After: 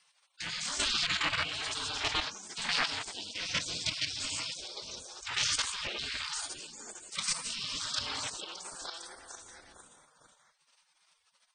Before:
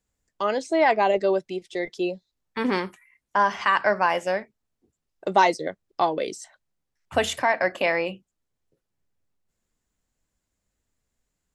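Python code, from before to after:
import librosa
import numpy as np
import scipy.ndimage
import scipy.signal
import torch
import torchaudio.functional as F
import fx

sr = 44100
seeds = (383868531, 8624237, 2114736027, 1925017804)

p1 = scipy.signal.sosfilt(scipy.signal.butter(2, 76.0, 'highpass', fs=sr, output='sos'), x)
p2 = fx.peak_eq(p1, sr, hz=1100.0, db=-5.0, octaves=2.5)
p3 = fx.rev_gated(p2, sr, seeds[0], gate_ms=160, shape='rising', drr_db=-2.5)
p4 = fx.leveller(p3, sr, passes=2)
p5 = fx.level_steps(p4, sr, step_db=15)
p6 = p5 * np.sin(2.0 * np.pi * 160.0 * np.arange(len(p5)) / sr)
p7 = p6 + fx.echo_stepped(p6, sr, ms=455, hz=1600.0, octaves=0.7, feedback_pct=70, wet_db=-6.0, dry=0)
p8 = fx.spec_gate(p7, sr, threshold_db=-25, keep='weak')
p9 = fx.brickwall_lowpass(p8, sr, high_hz=9300.0)
p10 = fx.env_flatten(p9, sr, amount_pct=50)
y = p10 * librosa.db_to_amplitude(6.0)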